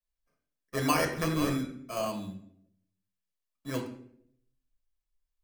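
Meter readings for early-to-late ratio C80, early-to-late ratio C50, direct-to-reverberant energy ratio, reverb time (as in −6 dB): 11.0 dB, 7.5 dB, 0.5 dB, 0.65 s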